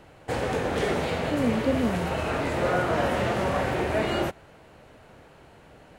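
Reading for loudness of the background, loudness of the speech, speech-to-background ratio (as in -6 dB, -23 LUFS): -27.0 LUFS, -28.5 LUFS, -1.5 dB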